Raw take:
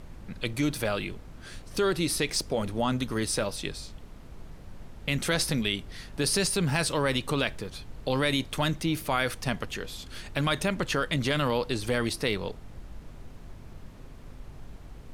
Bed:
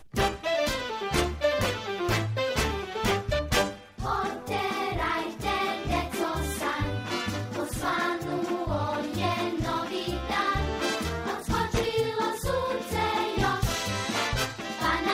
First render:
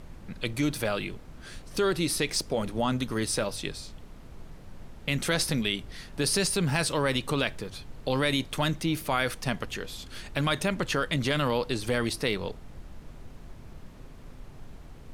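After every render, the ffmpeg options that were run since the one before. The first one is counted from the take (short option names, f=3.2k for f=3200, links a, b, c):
-af "bandreject=f=50:t=h:w=4,bandreject=f=100:t=h:w=4"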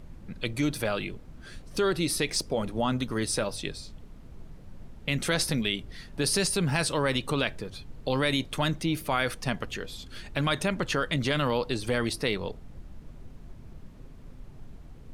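-af "afftdn=nr=6:nf=-47"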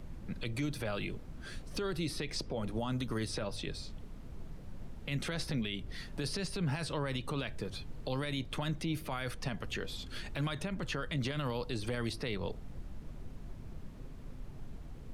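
-filter_complex "[0:a]acrossover=split=150|4800[a][b][c];[a]acompressor=threshold=-35dB:ratio=4[d];[b]acompressor=threshold=-34dB:ratio=4[e];[c]acompressor=threshold=-53dB:ratio=4[f];[d][e][f]amix=inputs=3:normalize=0,alimiter=level_in=2dB:limit=-24dB:level=0:latency=1:release=30,volume=-2dB"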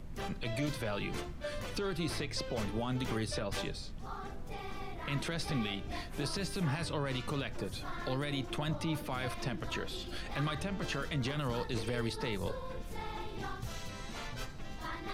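-filter_complex "[1:a]volume=-16dB[a];[0:a][a]amix=inputs=2:normalize=0"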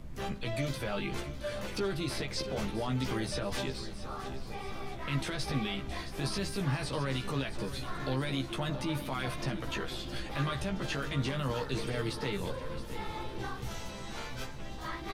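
-filter_complex "[0:a]asplit=2[a][b];[b]adelay=15,volume=-4dB[c];[a][c]amix=inputs=2:normalize=0,aecho=1:1:669|1338|2007|2676|3345|4014:0.237|0.13|0.0717|0.0395|0.0217|0.0119"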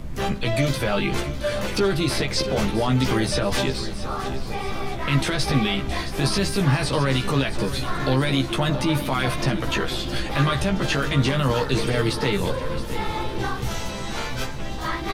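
-af "volume=12dB"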